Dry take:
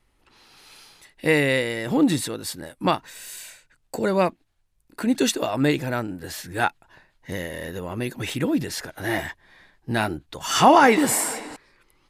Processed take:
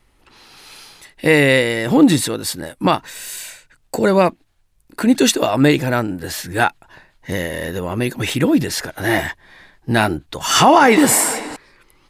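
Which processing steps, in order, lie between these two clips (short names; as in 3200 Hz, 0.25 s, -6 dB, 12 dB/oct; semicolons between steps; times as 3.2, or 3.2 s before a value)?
maximiser +9 dB; gain -1 dB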